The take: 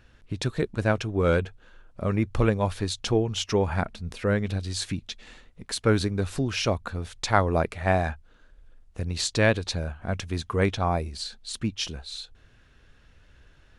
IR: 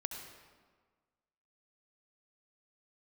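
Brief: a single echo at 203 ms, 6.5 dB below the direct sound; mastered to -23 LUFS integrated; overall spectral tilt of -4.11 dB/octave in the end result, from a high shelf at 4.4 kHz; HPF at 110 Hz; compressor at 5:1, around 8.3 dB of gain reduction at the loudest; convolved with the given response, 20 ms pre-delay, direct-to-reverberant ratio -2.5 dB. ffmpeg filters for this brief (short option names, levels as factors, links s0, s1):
-filter_complex "[0:a]highpass=110,highshelf=f=4400:g=3.5,acompressor=threshold=0.0562:ratio=5,aecho=1:1:203:0.473,asplit=2[s0][s1];[1:a]atrim=start_sample=2205,adelay=20[s2];[s1][s2]afir=irnorm=-1:irlink=0,volume=1.33[s3];[s0][s3]amix=inputs=2:normalize=0,volume=1.5"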